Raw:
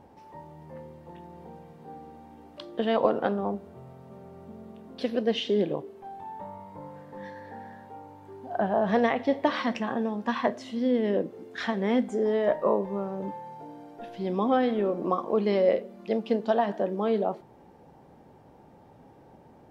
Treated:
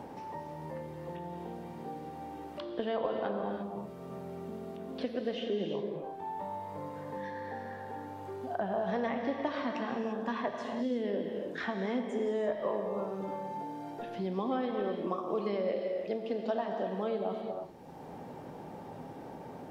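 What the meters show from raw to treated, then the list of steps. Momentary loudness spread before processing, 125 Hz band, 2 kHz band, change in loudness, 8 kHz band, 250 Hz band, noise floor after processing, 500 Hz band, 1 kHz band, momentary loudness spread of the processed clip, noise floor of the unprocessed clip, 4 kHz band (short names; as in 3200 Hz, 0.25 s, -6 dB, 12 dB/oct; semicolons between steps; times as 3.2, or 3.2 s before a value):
21 LU, -5.0 dB, -6.0 dB, -9.0 dB, n/a, -7.0 dB, -46 dBFS, -6.5 dB, -5.5 dB, 11 LU, -54 dBFS, -8.0 dB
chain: non-linear reverb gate 0.37 s flat, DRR 3.5 dB; three-band squash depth 70%; gain -8.5 dB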